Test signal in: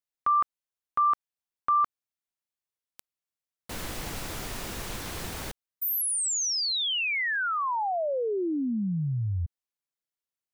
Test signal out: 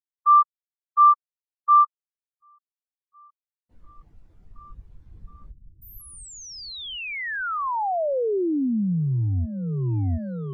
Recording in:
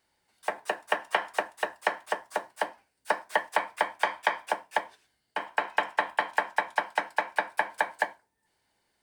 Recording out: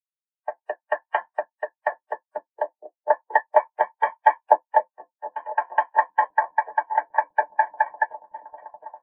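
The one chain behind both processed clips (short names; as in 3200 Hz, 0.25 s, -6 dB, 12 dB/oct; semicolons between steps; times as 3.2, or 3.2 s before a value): sample leveller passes 1; repeats that get brighter 0.719 s, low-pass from 200 Hz, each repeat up 1 oct, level 0 dB; spectral expander 2.5:1; gain +6 dB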